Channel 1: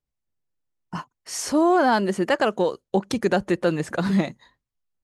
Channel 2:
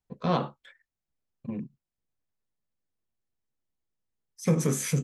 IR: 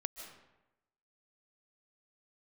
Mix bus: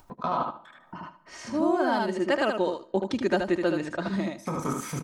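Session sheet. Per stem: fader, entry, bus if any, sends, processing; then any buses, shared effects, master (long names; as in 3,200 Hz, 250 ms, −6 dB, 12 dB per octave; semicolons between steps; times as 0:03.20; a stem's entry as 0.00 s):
−5.5 dB, 0.00 s, send −21.5 dB, echo send −5 dB, low-pass that shuts in the quiet parts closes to 1,700 Hz, open at −15 dBFS; automatic ducking −7 dB, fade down 0.50 s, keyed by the second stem
−2.0 dB, 0.00 s, send −15.5 dB, echo send −4 dB, de-essing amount 70%; flat-topped bell 1,000 Hz +12.5 dB 1.2 octaves; output level in coarse steps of 13 dB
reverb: on, RT60 0.95 s, pre-delay 110 ms
echo: repeating echo 76 ms, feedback 16%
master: comb filter 3.2 ms, depth 44%; upward compression, threshold −35 dBFS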